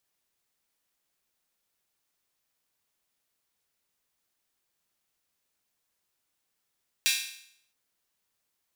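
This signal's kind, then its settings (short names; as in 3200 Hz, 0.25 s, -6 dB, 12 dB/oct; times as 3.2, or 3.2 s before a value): open hi-hat length 0.67 s, high-pass 2600 Hz, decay 0.67 s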